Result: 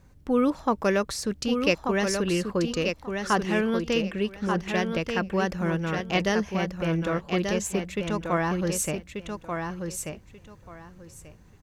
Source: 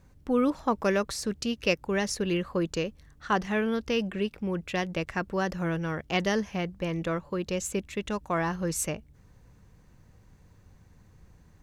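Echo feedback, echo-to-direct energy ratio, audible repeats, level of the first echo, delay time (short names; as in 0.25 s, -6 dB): 19%, -5.5 dB, 3, -5.5 dB, 1.186 s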